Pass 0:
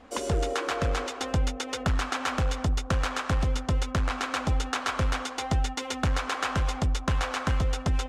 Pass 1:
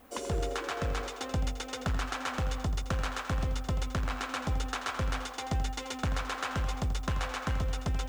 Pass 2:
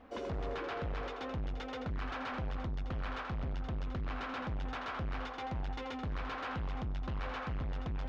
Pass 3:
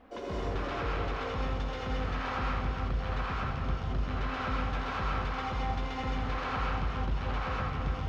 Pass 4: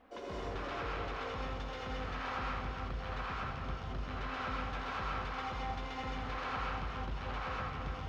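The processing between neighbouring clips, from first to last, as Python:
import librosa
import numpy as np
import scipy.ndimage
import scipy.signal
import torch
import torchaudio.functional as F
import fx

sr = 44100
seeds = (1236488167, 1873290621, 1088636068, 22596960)

y1 = fx.dmg_noise_colour(x, sr, seeds[0], colour='violet', level_db=-60.0)
y1 = fx.echo_feedback(y1, sr, ms=84, feedback_pct=31, wet_db=-11.5)
y1 = y1 * librosa.db_to_amplitude(-5.5)
y2 = np.clip(y1, -10.0 ** (-35.5 / 20.0), 10.0 ** (-35.5 / 20.0))
y2 = fx.air_absorb(y2, sr, metres=270.0)
y2 = y2 * librosa.db_to_amplitude(1.0)
y3 = y2 + 10.0 ** (-7.5 / 20.0) * np.pad(y2, (int(298 * sr / 1000.0), 0))[:len(y2)]
y3 = fx.rev_gated(y3, sr, seeds[1], gate_ms=250, shape='rising', drr_db=-4.5)
y4 = fx.low_shelf(y3, sr, hz=350.0, db=-5.5)
y4 = y4 * librosa.db_to_amplitude(-3.5)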